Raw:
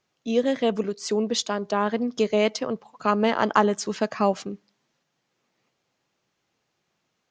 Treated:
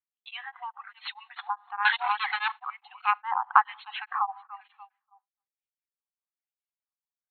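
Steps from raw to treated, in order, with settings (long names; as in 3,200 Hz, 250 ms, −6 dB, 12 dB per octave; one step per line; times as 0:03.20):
stylus tracing distortion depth 0.045 ms
on a send: feedback echo with a low-pass in the loop 290 ms, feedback 33%, low-pass 3,300 Hz, level −14 dB
on the sum: auto-filter low-pass sine 1.1 Hz 940–3,300 Hz
in parallel at +2 dB: downward compressor, threshold −30 dBFS, peak gain reduction 20 dB
0:01.85–0:02.52: on the sum: leveller curve on the samples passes 5
four-comb reverb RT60 0.71 s, combs from 31 ms, DRR 14.5 dB
brick-wall band-pass 730–4,300 Hz
downward expander −42 dBFS
reverb reduction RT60 0.91 s
tremolo along a rectified sine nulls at 4.8 Hz
level −3 dB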